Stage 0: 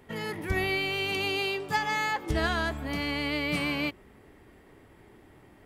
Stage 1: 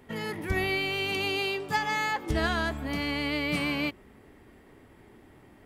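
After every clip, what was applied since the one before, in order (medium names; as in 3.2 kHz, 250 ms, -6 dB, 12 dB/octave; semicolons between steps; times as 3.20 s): peaking EQ 240 Hz +4 dB 0.31 oct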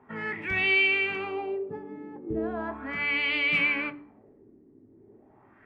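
LFO low-pass sine 0.37 Hz 320–2900 Hz; reverberation RT60 0.40 s, pre-delay 3 ms, DRR 11 dB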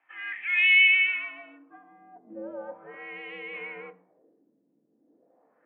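treble shelf 2.1 kHz +11 dB; mistuned SSB -110 Hz 340–3500 Hz; band-pass sweep 2.5 kHz -> 480 Hz, 1.08–2.52 s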